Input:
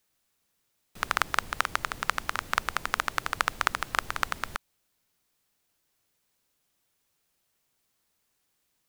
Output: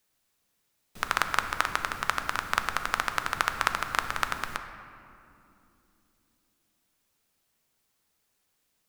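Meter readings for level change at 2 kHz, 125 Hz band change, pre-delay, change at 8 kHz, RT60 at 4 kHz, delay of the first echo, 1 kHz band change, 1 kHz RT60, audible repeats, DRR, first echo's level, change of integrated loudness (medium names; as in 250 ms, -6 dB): +1.0 dB, +1.0 dB, 4 ms, +0.5 dB, 1.5 s, no echo, +1.0 dB, 2.5 s, no echo, 7.0 dB, no echo, +0.5 dB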